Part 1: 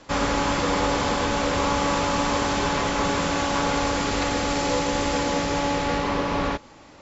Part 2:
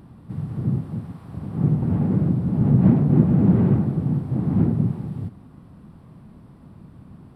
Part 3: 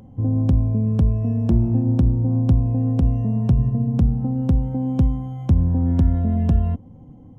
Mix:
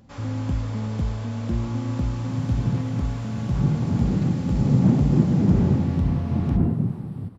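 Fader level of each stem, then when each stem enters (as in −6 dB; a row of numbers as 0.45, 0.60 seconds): −18.0, −2.5, −8.0 decibels; 0.00, 2.00, 0.00 seconds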